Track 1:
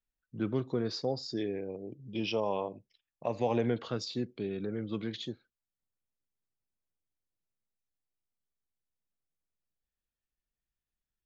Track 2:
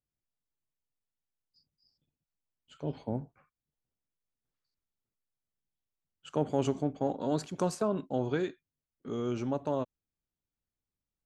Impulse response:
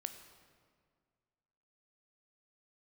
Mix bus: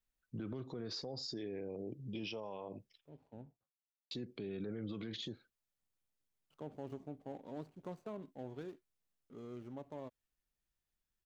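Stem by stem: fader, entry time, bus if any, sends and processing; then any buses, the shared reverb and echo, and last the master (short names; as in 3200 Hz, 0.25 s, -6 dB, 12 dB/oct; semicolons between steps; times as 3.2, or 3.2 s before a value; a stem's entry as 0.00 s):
+1.5 dB, 0.00 s, muted 3.1–4.11, no send, compressor, threshold -33 dBFS, peak gain reduction 9 dB
-15.0 dB, 0.25 s, no send, median filter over 25 samples; gate with hold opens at -55 dBFS; auto duck -9 dB, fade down 0.65 s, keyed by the first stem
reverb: off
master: limiter -34.5 dBFS, peak gain reduction 12 dB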